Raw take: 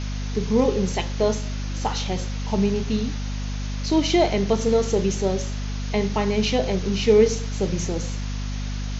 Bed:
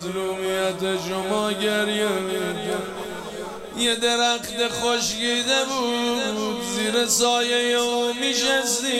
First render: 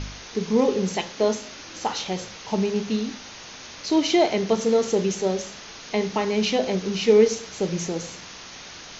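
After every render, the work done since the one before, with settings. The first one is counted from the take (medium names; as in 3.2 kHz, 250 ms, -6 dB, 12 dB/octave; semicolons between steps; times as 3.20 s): de-hum 50 Hz, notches 5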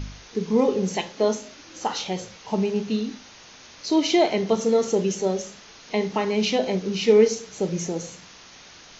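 noise print and reduce 6 dB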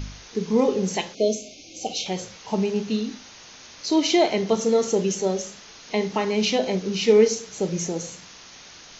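1.14–2.06 s: time-frequency box 780–2100 Hz -29 dB; treble shelf 5.4 kHz +5.5 dB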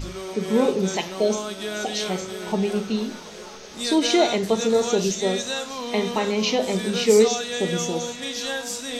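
add bed -8 dB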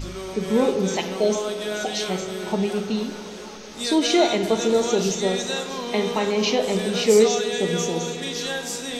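spring tank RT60 3.7 s, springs 48/60 ms, chirp 25 ms, DRR 9 dB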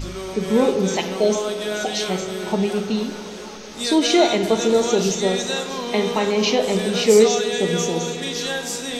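trim +2.5 dB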